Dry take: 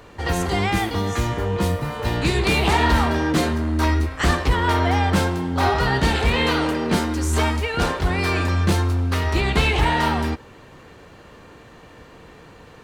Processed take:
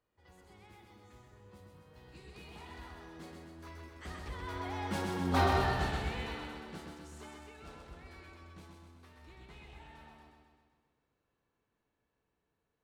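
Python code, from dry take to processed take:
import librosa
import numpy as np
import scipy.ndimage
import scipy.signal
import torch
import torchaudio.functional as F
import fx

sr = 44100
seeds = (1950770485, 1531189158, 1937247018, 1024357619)

p1 = fx.doppler_pass(x, sr, speed_mps=15, closest_m=2.4, pass_at_s=5.34)
p2 = p1 + fx.echo_feedback(p1, sr, ms=128, feedback_pct=59, wet_db=-4.0, dry=0)
y = p2 * librosa.db_to_amplitude(-8.5)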